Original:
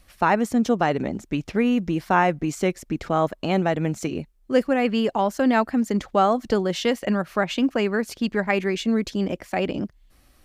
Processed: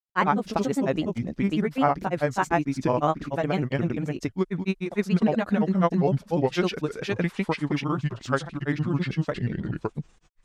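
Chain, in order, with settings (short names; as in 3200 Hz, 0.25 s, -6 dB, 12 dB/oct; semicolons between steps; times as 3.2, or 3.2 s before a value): gliding pitch shift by -7.5 st starting unshifted; grains, spray 0.362 s, pitch spread up and down by 3 st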